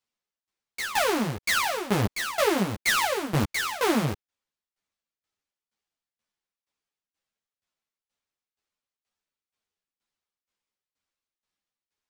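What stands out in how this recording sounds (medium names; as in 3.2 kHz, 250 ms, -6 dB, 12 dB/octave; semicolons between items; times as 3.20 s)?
tremolo saw down 2.1 Hz, depth 90%; aliases and images of a low sample rate 13 kHz, jitter 20%; a shimmering, thickened sound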